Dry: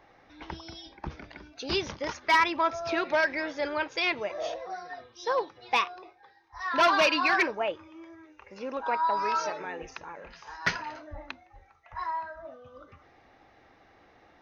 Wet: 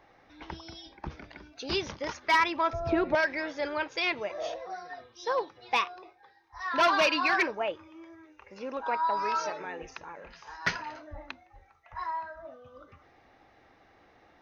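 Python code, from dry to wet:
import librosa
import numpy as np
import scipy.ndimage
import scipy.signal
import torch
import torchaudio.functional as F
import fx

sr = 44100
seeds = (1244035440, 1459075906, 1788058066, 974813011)

y = fx.tilt_eq(x, sr, slope=-4.5, at=(2.73, 3.15))
y = y * 10.0 ** (-1.5 / 20.0)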